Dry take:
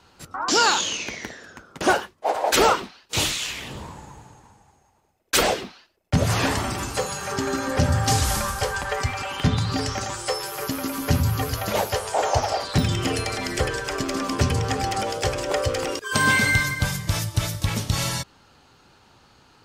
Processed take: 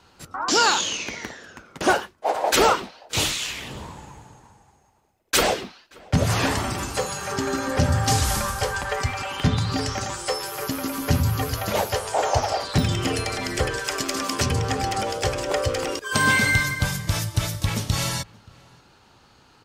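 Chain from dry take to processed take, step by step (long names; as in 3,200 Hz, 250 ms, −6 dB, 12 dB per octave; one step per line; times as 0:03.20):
0:13.79–0:14.46: spectral tilt +2 dB per octave
slap from a distant wall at 99 metres, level −25 dB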